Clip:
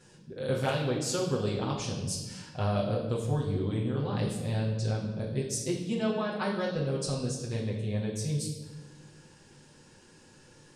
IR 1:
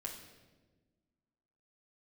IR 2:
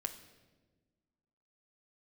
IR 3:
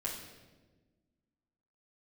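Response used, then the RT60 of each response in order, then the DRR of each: 3; 1.3, 1.3, 1.3 s; -2.0, 5.5, -6.0 dB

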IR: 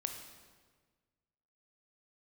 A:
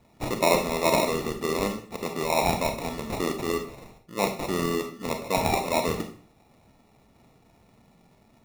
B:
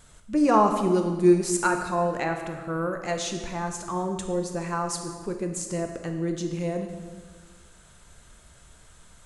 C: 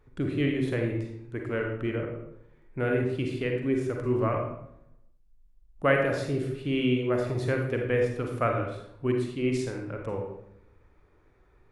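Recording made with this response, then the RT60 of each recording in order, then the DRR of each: B; 0.50, 1.5, 0.75 s; 5.0, 5.0, 1.5 dB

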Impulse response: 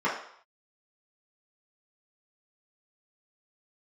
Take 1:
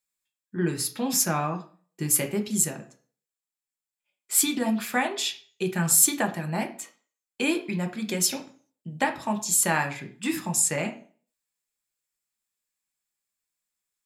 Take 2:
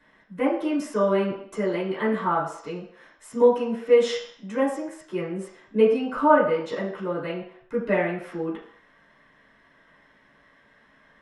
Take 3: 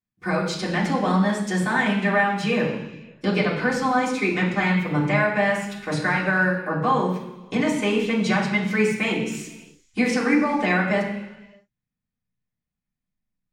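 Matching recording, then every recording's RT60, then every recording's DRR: 2; 0.40 s, 0.60 s, not exponential; 4.0, -7.5, -8.0 dB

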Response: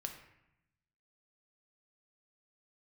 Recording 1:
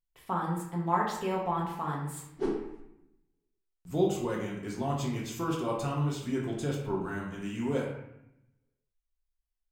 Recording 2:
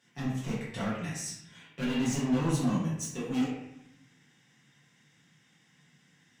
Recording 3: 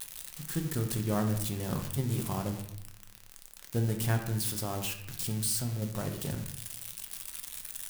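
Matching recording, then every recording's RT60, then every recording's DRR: 3; 0.80, 0.80, 0.80 s; -3.0, -10.5, 3.5 dB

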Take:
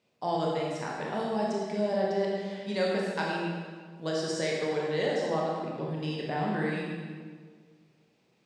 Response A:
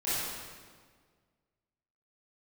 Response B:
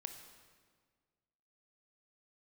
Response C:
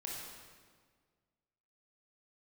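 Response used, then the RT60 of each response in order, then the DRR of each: C; 1.7, 1.7, 1.7 s; -13.5, 6.0, -3.5 dB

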